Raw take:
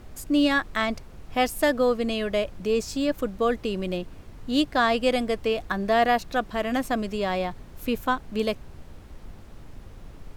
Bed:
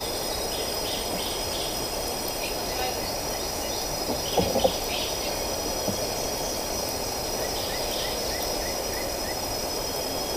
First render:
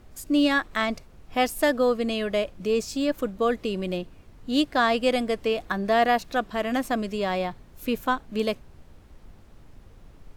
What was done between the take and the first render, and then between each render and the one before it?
noise print and reduce 6 dB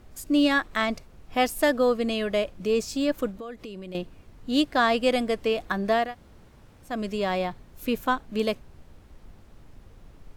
3.31–3.95 s: compression 4:1, threshold -37 dBFS; 6.03–6.93 s: room tone, crossfade 0.24 s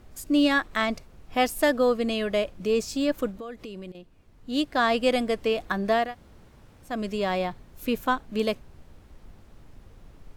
3.92–4.99 s: fade in, from -16.5 dB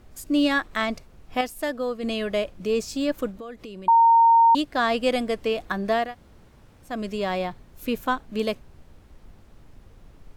1.41–2.03 s: gain -6 dB; 3.88–4.55 s: bleep 920 Hz -12 dBFS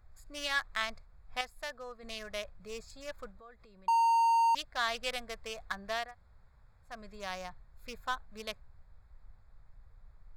local Wiener filter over 15 samples; amplifier tone stack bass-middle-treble 10-0-10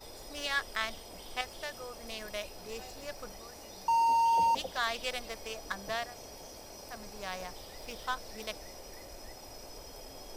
add bed -19.5 dB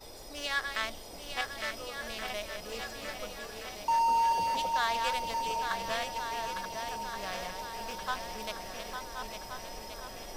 chunks repeated in reverse 618 ms, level -7 dB; shuffle delay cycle 1425 ms, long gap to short 1.5:1, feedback 52%, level -7 dB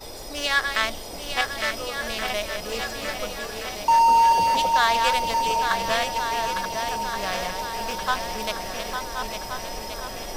trim +10 dB

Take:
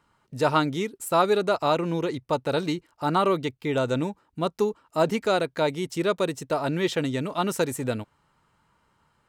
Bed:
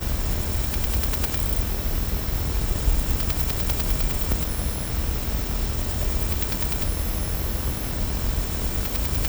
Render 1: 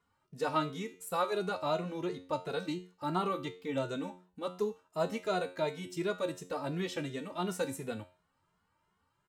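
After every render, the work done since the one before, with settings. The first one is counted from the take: feedback comb 90 Hz, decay 0.41 s, harmonics all, mix 70%; endless flanger 2.4 ms +2.8 Hz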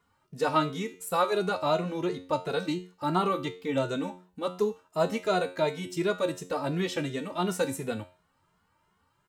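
trim +6 dB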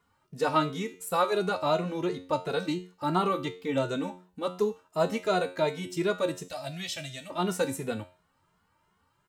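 6.48–7.30 s: FFT filter 100 Hz 0 dB, 460 Hz -24 dB, 650 Hz +2 dB, 940 Hz -15 dB, 2.3 kHz -1 dB, 4.5 kHz +4 dB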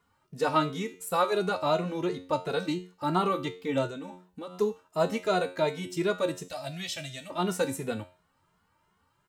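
3.87–4.59 s: compression, threshold -36 dBFS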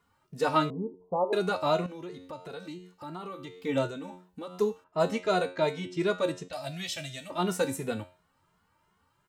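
0.70–1.33 s: steep low-pass 1 kHz 72 dB/octave; 1.86–3.58 s: compression 2.5:1, threshold -43 dBFS; 4.84–6.53 s: level-controlled noise filter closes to 2.1 kHz, open at -21.5 dBFS

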